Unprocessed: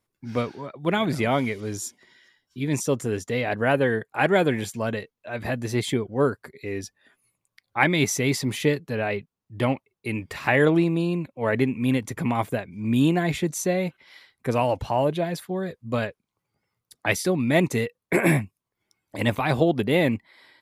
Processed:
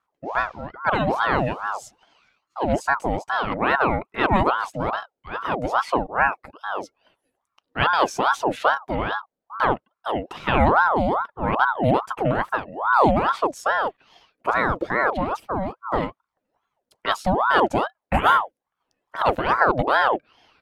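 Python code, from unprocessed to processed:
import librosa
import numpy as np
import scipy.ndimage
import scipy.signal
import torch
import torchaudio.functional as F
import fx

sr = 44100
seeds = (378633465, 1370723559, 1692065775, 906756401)

y = fx.lowpass(x, sr, hz=2900.0, slope=6)
y = fx.low_shelf(y, sr, hz=290.0, db=8.5)
y = fx.ring_lfo(y, sr, carrier_hz=810.0, swing_pct=55, hz=2.4)
y = y * librosa.db_to_amplitude(1.0)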